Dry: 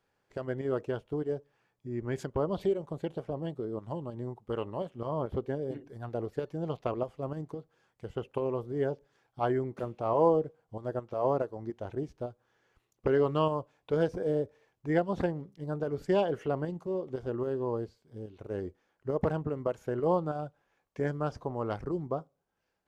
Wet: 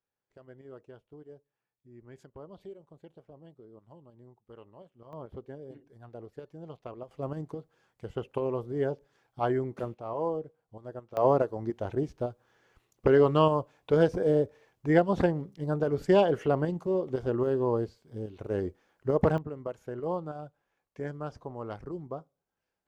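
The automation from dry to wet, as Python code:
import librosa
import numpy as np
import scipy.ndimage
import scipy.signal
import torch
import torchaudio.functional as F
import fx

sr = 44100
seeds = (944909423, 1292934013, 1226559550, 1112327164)

y = fx.gain(x, sr, db=fx.steps((0.0, -16.5), (5.13, -10.0), (7.11, 1.0), (9.94, -7.0), (11.17, 5.0), (19.38, -5.0)))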